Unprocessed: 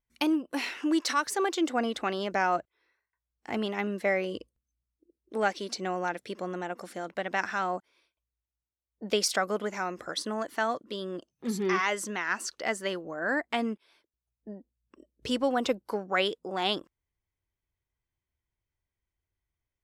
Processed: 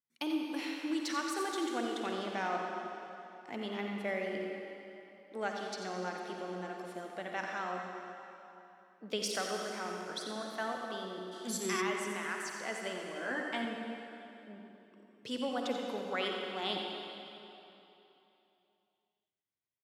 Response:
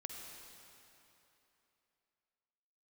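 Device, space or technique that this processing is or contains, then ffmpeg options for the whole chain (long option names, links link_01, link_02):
PA in a hall: -filter_complex "[0:a]highpass=frequency=130:width=0.5412,highpass=frequency=130:width=1.3066,equalizer=frequency=3400:width_type=o:width=0.3:gain=3.5,aecho=1:1:89:0.335[link_01];[1:a]atrim=start_sample=2205[link_02];[link_01][link_02]afir=irnorm=-1:irlink=0,asplit=3[link_03][link_04][link_05];[link_03]afade=type=out:start_time=11.31:duration=0.02[link_06];[link_04]equalizer=frequency=8100:width_type=o:width=2.1:gain=14.5,afade=type=in:start_time=11.31:duration=0.02,afade=type=out:start_time=11.8:duration=0.02[link_07];[link_05]afade=type=in:start_time=11.8:duration=0.02[link_08];[link_06][link_07][link_08]amix=inputs=3:normalize=0,asettb=1/sr,asplit=3[link_09][link_10][link_11];[link_09]atrim=end=13.144[link_12];[link_10]atrim=start=13.14:end=13.65,asetpts=PTS-STARTPTS,afade=type=in:duration=0.004:curve=qsin,afade=type=out:start_time=0.506:duration=0.004:curve=qsin,asplit=2[link_13][link_14];[link_14]adelay=16,volume=-5dB[link_15];[link_13][link_15]amix=inputs=2:normalize=0,atrim=end_sample=22491[link_16];[link_11]atrim=start=13.646[link_17];[link_12][link_16]acrossfade=duration=0.004:curve1=hsin:curve2=qsin[link_18];[link_18][link_17]acrossfade=duration=0.004:curve1=qsin:curve2=hsin,volume=-5dB"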